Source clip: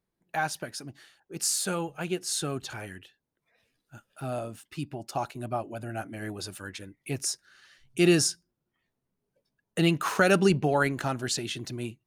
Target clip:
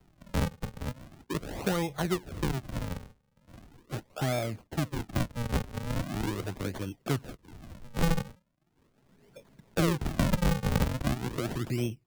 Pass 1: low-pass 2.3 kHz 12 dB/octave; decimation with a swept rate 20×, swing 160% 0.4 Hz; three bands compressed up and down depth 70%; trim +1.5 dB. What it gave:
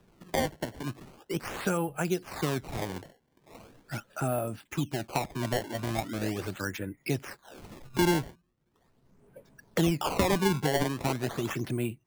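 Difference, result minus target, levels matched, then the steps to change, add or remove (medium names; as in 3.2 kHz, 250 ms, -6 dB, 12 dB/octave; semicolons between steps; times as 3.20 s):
decimation with a swept rate: distortion -14 dB
change: decimation with a swept rate 74×, swing 160% 0.4 Hz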